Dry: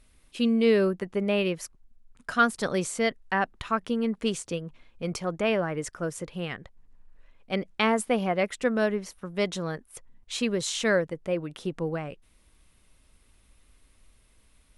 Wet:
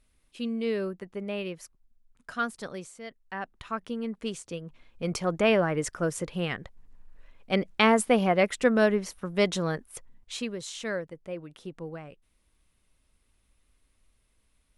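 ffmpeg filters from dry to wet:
ffmpeg -i in.wav -af "volume=12.5dB,afade=type=out:start_time=2.53:duration=0.48:silence=0.334965,afade=type=in:start_time=3.01:duration=0.75:silence=0.266073,afade=type=in:start_time=4.49:duration=0.88:silence=0.354813,afade=type=out:start_time=9.86:duration=0.67:silence=0.266073" out.wav

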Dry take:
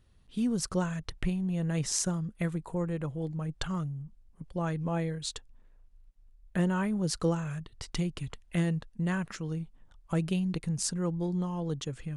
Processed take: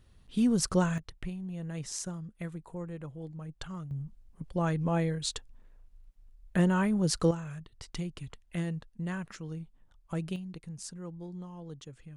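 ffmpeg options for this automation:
ffmpeg -i in.wav -af "asetnsamples=nb_out_samples=441:pad=0,asendcmd='0.98 volume volume -7.5dB;3.91 volume volume 2.5dB;7.31 volume volume -5dB;10.36 volume volume -11dB',volume=3.5dB" out.wav

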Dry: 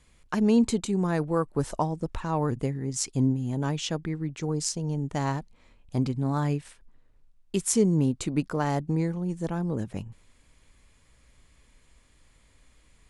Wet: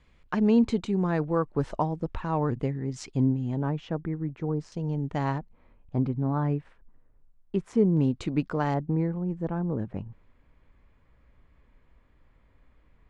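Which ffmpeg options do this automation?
ffmpeg -i in.wav -af "asetnsamples=nb_out_samples=441:pad=0,asendcmd='3.62 lowpass f 1400;4.72 lowpass f 3200;5.38 lowpass f 1500;7.97 lowpass f 3600;8.74 lowpass f 1600',lowpass=3200" out.wav

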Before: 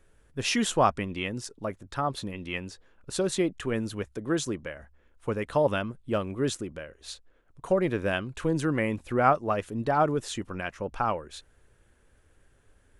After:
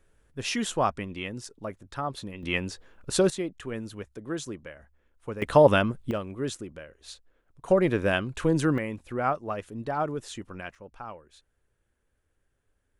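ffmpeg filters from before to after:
ffmpeg -i in.wav -af "asetnsamples=nb_out_samples=441:pad=0,asendcmd='2.43 volume volume 5.5dB;3.3 volume volume -5.5dB;5.42 volume volume 7dB;6.11 volume volume -3.5dB;7.68 volume volume 3dB;8.78 volume volume -5dB;10.75 volume volume -13dB',volume=-3dB" out.wav

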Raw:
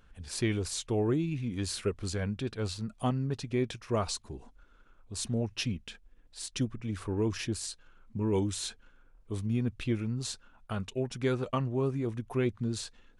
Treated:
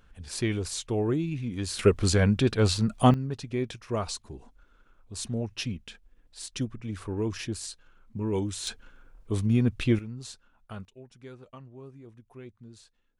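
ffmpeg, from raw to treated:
ffmpeg -i in.wav -af "asetnsamples=nb_out_samples=441:pad=0,asendcmd='1.79 volume volume 11dB;3.14 volume volume 0dB;8.67 volume volume 7dB;9.99 volume volume -5.5dB;10.85 volume volume -16dB',volume=1.5dB" out.wav

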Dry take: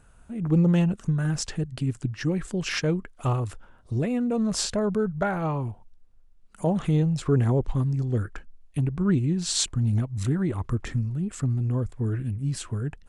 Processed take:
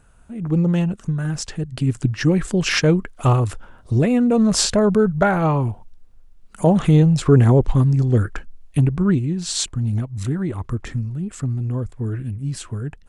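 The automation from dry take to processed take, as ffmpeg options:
ffmpeg -i in.wav -af "volume=9dB,afade=type=in:start_time=1.58:duration=0.44:silence=0.446684,afade=type=out:start_time=8.81:duration=0.44:silence=0.446684" out.wav

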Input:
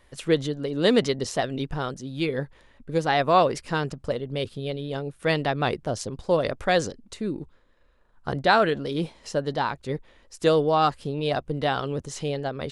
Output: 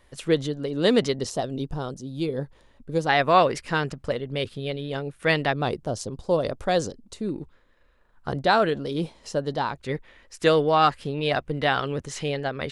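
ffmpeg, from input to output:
ffmpeg -i in.wav -af "asetnsamples=nb_out_samples=441:pad=0,asendcmd='1.3 equalizer g -12.5;2.41 equalizer g -6;3.09 equalizer g 5;5.53 equalizer g -7;7.29 equalizer g 3.5;8.28 equalizer g -3;9.8 equalizer g 7.5',equalizer=frequency=2000:width_type=o:width=1.3:gain=-1" out.wav

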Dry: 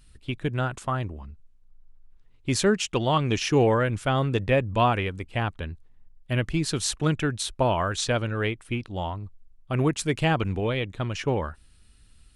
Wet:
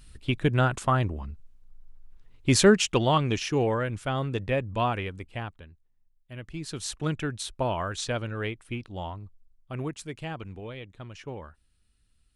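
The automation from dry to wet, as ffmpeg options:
ffmpeg -i in.wav -af "volume=15dB,afade=type=out:start_time=2.68:duration=0.81:silence=0.354813,afade=type=out:start_time=5.23:duration=0.44:silence=0.281838,afade=type=in:start_time=6.36:duration=0.71:silence=0.281838,afade=type=out:start_time=9.08:duration=1.08:silence=0.398107" out.wav

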